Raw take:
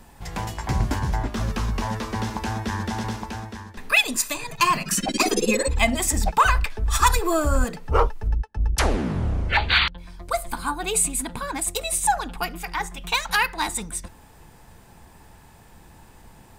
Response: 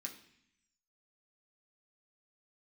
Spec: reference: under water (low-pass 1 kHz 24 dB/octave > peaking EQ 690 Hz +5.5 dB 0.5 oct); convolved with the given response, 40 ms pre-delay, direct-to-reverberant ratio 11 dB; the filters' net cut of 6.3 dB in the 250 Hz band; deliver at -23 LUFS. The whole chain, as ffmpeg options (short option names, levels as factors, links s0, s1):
-filter_complex "[0:a]equalizer=f=250:t=o:g=-8.5,asplit=2[s0][s1];[1:a]atrim=start_sample=2205,adelay=40[s2];[s1][s2]afir=irnorm=-1:irlink=0,volume=0.422[s3];[s0][s3]amix=inputs=2:normalize=0,lowpass=f=1000:w=0.5412,lowpass=f=1000:w=1.3066,equalizer=f=690:t=o:w=0.5:g=5.5,volume=1.68"